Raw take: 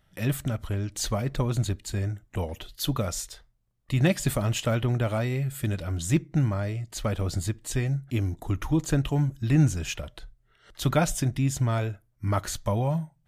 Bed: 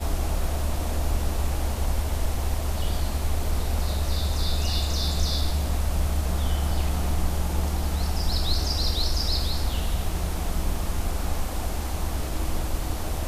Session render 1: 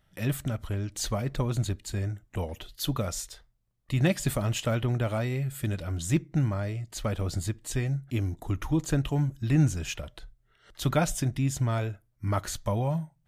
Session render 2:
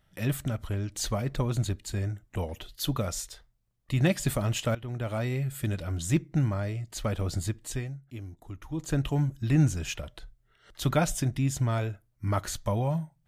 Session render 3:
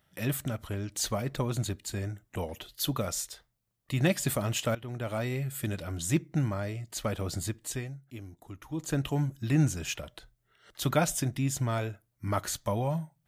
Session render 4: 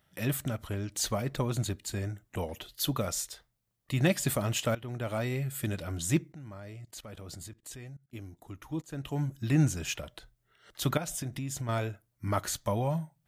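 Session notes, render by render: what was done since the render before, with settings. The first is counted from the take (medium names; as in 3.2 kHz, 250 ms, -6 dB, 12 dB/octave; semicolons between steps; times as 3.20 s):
trim -2 dB
4.75–5.28 s: fade in, from -17 dB; 7.62–9.02 s: dip -11.5 dB, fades 0.33 s
high-pass 140 Hz 6 dB/octave; treble shelf 11 kHz +6.5 dB
6.32–8.15 s: level held to a coarse grid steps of 22 dB; 8.82–9.36 s: fade in, from -19.5 dB; 10.97–11.69 s: compression, threshold -32 dBFS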